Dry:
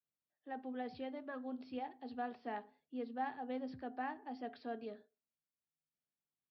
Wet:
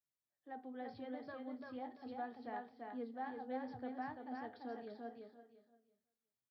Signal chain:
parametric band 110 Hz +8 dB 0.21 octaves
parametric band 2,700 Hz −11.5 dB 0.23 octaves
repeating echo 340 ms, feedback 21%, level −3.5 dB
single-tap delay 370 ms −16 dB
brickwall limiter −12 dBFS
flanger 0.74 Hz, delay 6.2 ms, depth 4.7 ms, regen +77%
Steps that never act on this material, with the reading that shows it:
brickwall limiter −12 dBFS: peak of its input −27.0 dBFS

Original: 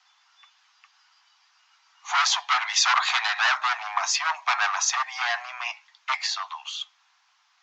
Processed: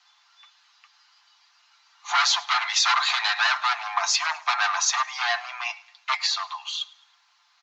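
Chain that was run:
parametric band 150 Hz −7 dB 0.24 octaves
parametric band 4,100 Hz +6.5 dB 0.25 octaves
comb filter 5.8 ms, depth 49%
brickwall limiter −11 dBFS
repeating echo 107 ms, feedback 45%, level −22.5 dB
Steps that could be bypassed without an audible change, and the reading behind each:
parametric band 150 Hz: nothing at its input below 570 Hz

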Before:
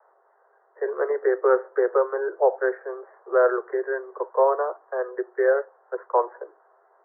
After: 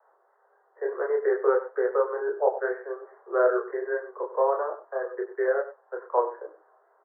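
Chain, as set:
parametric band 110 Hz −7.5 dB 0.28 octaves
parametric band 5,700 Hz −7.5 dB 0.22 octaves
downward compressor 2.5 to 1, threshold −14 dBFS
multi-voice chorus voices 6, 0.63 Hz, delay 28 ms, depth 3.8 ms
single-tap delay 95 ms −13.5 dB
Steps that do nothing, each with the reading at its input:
parametric band 110 Hz: nothing at its input below 340 Hz
parametric band 5,700 Hz: nothing at its input above 1,800 Hz

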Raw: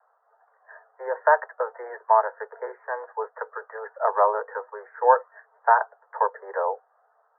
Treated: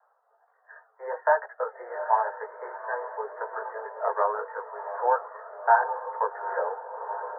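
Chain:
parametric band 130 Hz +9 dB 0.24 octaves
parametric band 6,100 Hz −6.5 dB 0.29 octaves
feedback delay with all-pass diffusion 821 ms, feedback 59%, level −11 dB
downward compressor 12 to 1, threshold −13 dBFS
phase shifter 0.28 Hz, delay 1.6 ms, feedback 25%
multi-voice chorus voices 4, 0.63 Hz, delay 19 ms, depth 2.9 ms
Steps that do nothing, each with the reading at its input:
parametric band 130 Hz: nothing at its input below 360 Hz
parametric band 6,100 Hz: nothing at its input above 1,900 Hz

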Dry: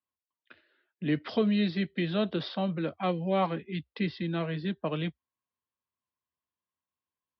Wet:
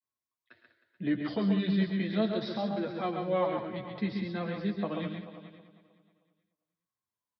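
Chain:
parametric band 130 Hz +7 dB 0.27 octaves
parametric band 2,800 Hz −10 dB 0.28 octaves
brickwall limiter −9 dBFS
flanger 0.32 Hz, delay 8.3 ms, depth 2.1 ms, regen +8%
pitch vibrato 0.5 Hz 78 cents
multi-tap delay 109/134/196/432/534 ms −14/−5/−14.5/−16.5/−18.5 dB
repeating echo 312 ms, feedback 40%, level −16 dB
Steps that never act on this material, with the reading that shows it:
brickwall limiter −9 dBFS: peak of its input −15.5 dBFS

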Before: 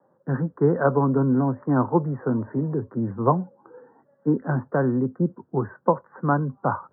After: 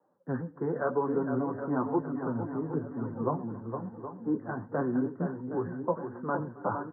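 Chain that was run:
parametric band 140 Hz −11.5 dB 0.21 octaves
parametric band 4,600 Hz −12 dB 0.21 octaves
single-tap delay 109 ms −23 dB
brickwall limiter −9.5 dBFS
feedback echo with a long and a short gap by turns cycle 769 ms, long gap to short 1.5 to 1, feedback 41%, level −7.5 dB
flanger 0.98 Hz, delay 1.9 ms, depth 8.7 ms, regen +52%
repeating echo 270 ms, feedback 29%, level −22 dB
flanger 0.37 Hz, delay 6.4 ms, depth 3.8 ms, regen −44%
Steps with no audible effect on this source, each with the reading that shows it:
parametric band 4,600 Hz: nothing at its input above 1,600 Hz

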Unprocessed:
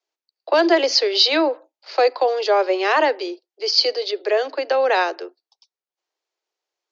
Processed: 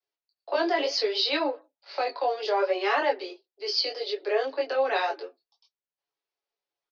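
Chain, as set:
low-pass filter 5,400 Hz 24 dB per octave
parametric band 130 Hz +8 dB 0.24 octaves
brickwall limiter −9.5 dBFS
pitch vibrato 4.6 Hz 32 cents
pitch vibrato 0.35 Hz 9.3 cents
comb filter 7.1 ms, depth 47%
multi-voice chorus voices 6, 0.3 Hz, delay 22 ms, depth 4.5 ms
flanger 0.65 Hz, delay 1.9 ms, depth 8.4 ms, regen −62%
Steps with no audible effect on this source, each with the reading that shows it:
parametric band 130 Hz: nothing at its input below 250 Hz

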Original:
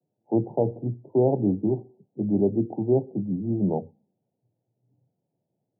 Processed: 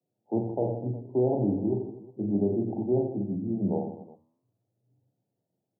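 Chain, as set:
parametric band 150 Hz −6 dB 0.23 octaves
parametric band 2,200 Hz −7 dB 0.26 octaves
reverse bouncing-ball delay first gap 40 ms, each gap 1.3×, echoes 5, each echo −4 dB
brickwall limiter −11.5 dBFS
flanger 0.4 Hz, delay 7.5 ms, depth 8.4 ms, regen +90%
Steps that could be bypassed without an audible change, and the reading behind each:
parametric band 2,200 Hz: nothing at its input above 910 Hz

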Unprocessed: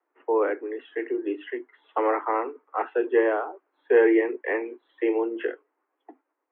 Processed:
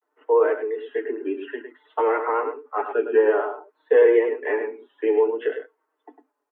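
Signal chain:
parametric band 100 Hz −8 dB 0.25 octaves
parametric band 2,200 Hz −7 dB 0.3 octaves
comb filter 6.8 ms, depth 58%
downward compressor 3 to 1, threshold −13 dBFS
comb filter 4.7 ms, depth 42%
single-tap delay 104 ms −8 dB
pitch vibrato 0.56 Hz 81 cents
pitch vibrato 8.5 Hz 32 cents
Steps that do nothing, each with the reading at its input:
parametric band 100 Hz: nothing at its input below 240 Hz

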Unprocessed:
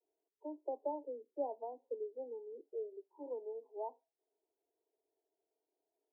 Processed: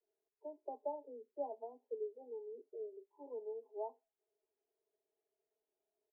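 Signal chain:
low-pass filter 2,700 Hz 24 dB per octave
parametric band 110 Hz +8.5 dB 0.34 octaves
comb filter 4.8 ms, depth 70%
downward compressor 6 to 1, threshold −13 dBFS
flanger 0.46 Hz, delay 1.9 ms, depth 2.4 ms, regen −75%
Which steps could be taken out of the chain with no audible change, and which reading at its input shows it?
low-pass filter 2,700 Hz: nothing at its input above 1,000 Hz
parametric band 110 Hz: nothing at its input below 230 Hz
downward compressor, threshold −13 dBFS: peak of its input −25.5 dBFS

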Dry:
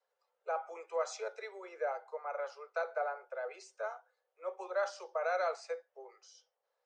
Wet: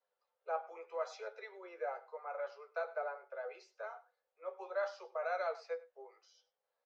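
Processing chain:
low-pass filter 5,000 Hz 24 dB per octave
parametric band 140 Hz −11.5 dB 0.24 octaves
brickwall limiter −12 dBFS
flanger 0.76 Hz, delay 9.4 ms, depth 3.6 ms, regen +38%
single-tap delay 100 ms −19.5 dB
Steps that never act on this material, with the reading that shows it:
parametric band 140 Hz: nothing at its input below 340 Hz
brickwall limiter −12 dBFS: peak of its input −21.0 dBFS

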